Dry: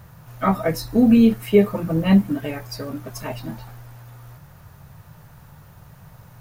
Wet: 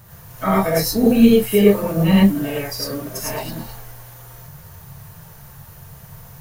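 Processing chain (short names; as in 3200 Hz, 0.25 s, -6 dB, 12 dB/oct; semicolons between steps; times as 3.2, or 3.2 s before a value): high shelf 4800 Hz +10.5 dB; non-linear reverb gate 0.13 s rising, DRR -5.5 dB; gain -3 dB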